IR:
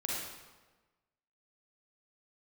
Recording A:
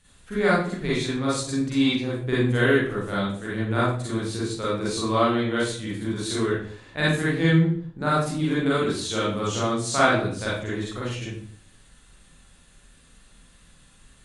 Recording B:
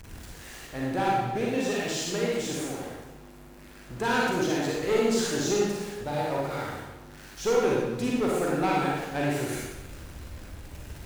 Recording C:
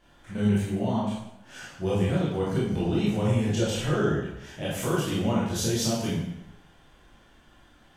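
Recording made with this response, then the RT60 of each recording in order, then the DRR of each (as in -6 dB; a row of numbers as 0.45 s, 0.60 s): B; no single decay rate, 1.3 s, 0.85 s; -8.5 dB, -4.5 dB, -8.0 dB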